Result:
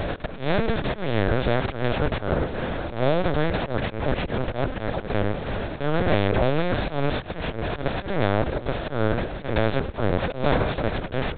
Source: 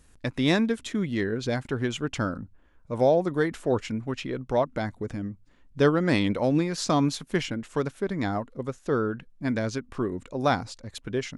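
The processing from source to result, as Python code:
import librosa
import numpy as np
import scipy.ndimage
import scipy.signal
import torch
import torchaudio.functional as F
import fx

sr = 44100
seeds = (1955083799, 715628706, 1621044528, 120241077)

y = fx.bin_compress(x, sr, power=0.2)
y = fx.auto_swell(y, sr, attack_ms=144.0)
y = fx.lpc_vocoder(y, sr, seeds[0], excitation='pitch_kept', order=8)
y = y * 10.0 ** (-5.0 / 20.0)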